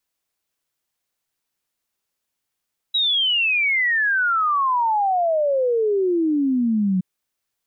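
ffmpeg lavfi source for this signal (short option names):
-f lavfi -i "aevalsrc='0.15*clip(min(t,4.07-t)/0.01,0,1)*sin(2*PI*3900*4.07/log(180/3900)*(exp(log(180/3900)*t/4.07)-1))':d=4.07:s=44100"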